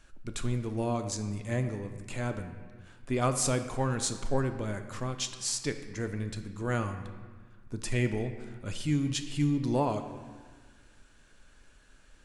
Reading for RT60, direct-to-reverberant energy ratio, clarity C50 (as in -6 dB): 1.5 s, 7.5 dB, 9.5 dB